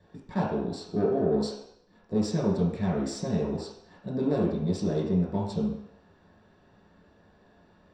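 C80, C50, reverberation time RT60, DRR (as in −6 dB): 6.0 dB, 2.5 dB, 0.75 s, −6.5 dB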